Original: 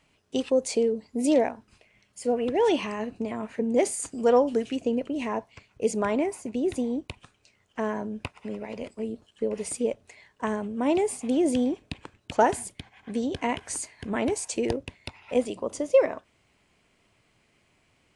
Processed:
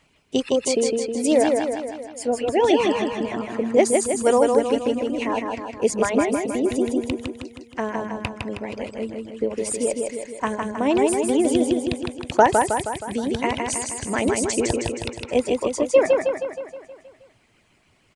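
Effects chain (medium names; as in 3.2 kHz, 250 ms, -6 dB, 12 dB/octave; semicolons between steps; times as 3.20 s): reverb removal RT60 0.9 s; feedback delay 158 ms, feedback 57%, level -3.5 dB; harmonic-percussive split harmonic -5 dB; trim +7 dB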